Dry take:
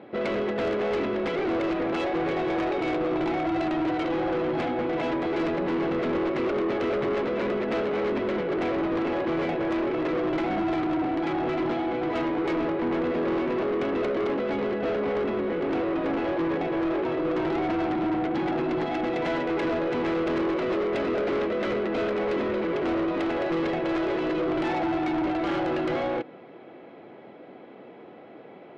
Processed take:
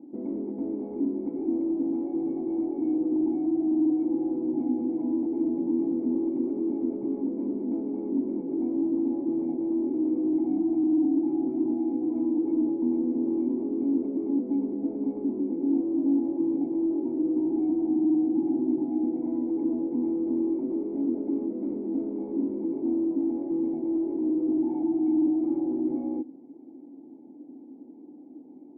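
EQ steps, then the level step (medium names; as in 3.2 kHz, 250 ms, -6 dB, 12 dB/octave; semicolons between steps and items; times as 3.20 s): cascade formant filter u; peaking EQ 260 Hz +14 dB 0.57 oct; -1.5 dB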